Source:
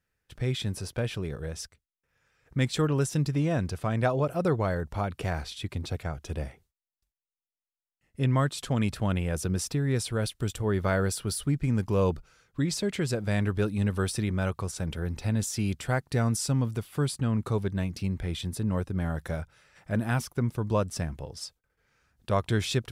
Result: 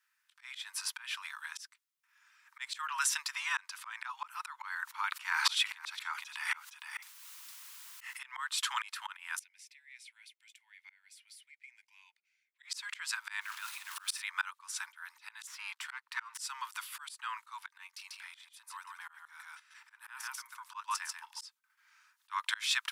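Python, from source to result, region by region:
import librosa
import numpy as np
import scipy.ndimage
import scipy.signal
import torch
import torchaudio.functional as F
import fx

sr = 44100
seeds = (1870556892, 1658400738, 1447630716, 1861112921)

y = fx.chain(x, sr, fx.echo_single(ms=462, db=-17.5),
    fx.env_flatten(amount_pct=70), at=(4.82, 8.39))
y = fx.chain(y, sr, fx.double_bandpass(hz=1200.0, octaves=1.7),
    fx.differentiator(), at=(9.39, 12.63))
y = fx.chain(y, sr, fx.block_float(bits=5),
    fx.over_compress(threshold_db=-32.0, ratio=-1.0),
    fx.room_flutter(wall_m=7.6, rt60_s=0.24), at=(13.41, 14.22))
y = fx.chain(y, sr, fx.halfwave_gain(db=-12.0),
    fx.highpass(hz=750.0, slope=12),
    fx.high_shelf(hz=4800.0, db=-11.0), at=(15.47, 16.38))
y = fx.chain(y, sr, fx.level_steps(step_db=12),
    fx.echo_single(ms=142, db=-3.5), at=(17.87, 21.41))
y = scipy.signal.sosfilt(scipy.signal.butter(16, 910.0, 'highpass', fs=sr, output='sos'), y)
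y = fx.dynamic_eq(y, sr, hz=1900.0, q=0.7, threshold_db=-47.0, ratio=4.0, max_db=4)
y = fx.auto_swell(y, sr, attack_ms=300.0)
y = y * 10.0 ** (5.5 / 20.0)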